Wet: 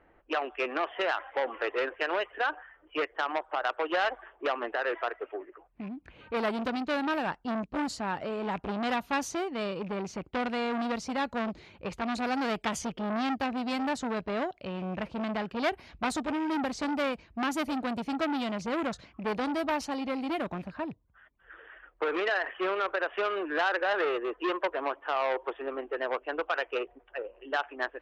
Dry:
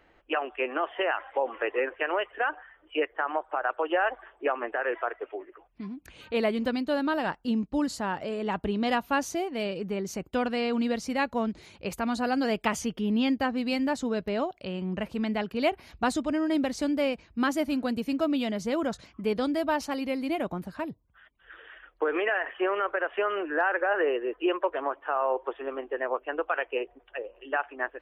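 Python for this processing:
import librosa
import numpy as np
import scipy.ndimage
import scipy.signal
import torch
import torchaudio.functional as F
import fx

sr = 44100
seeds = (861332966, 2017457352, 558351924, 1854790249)

y = fx.rattle_buzz(x, sr, strikes_db=-38.0, level_db=-35.0)
y = fx.env_lowpass(y, sr, base_hz=1700.0, full_db=-22.5)
y = fx.transformer_sat(y, sr, knee_hz=2000.0)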